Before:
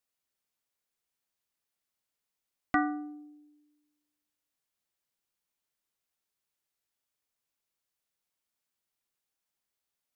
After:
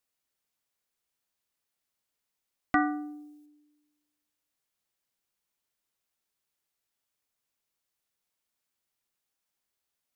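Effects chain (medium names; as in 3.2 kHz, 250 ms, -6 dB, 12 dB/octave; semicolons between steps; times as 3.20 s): 2.80–3.46 s: treble shelf 3.3 kHz +10 dB; trim +2 dB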